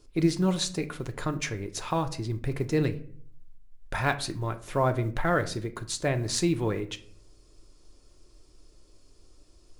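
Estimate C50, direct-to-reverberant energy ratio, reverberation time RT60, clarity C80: 15.5 dB, 7.5 dB, 0.55 s, 20.0 dB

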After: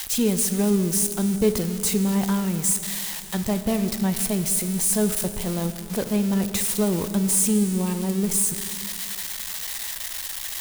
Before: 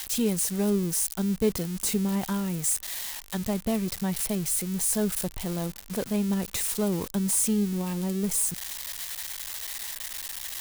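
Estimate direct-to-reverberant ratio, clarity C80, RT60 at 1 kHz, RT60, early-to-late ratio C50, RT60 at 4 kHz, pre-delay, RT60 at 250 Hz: 9.0 dB, 10.5 dB, 2.8 s, 2.8 s, 10.0 dB, 2.6 s, 7 ms, 2.7 s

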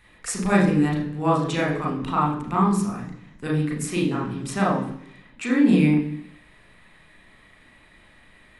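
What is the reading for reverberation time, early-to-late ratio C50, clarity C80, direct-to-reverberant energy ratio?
0.70 s, 6.0 dB, 9.5 dB, -3.0 dB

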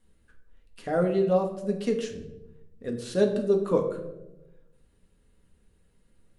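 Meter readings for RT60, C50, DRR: 1.0 s, 9.0 dB, 2.0 dB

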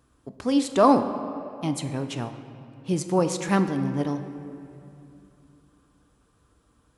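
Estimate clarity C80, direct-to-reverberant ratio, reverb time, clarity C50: 10.5 dB, 8.0 dB, 2.7 s, 9.5 dB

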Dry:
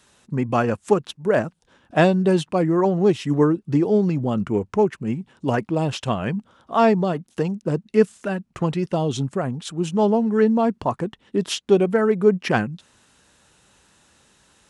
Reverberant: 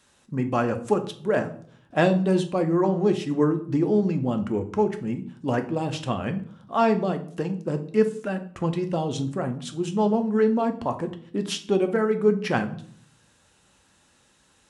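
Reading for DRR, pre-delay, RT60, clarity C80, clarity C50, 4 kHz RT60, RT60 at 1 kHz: 6.5 dB, 4 ms, 0.55 s, 17.5 dB, 13.0 dB, 0.40 s, 0.50 s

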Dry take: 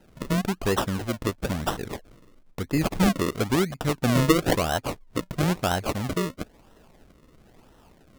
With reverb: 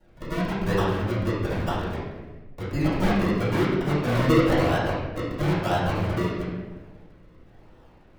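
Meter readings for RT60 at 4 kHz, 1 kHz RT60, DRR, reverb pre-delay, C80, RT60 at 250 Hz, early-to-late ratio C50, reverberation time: 0.90 s, 1.1 s, -12.5 dB, 3 ms, 2.5 dB, 1.5 s, -0.5 dB, 1.2 s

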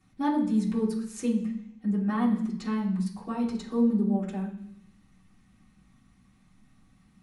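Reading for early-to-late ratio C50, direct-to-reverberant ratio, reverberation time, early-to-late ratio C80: 7.5 dB, -8.5 dB, 0.70 s, 11.5 dB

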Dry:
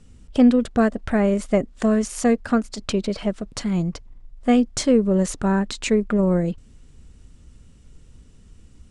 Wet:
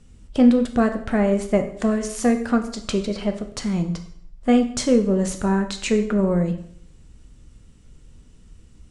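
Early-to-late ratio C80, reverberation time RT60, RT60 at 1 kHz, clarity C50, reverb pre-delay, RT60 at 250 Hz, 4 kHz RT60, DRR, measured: 13.5 dB, 0.60 s, 0.65 s, 10.5 dB, 5 ms, 0.65 s, 0.60 s, 5.5 dB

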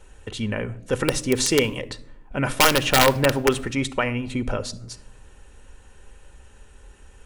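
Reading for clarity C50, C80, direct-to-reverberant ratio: 18.5 dB, 22.5 dB, 11.0 dB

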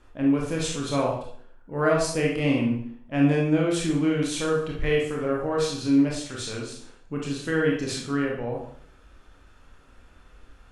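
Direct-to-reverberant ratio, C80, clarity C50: -2.5 dB, 7.5 dB, 2.5 dB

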